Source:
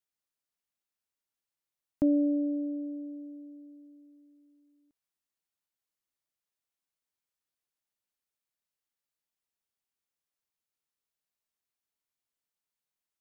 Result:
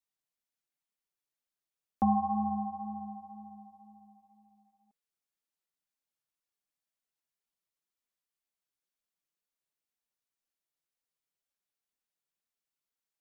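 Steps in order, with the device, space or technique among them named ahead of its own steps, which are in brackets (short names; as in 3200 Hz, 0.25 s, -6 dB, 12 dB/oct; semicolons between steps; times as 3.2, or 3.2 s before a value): alien voice (ring modulator 500 Hz; flange 2 Hz, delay 3.3 ms, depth 4.2 ms, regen -4%); gain +3.5 dB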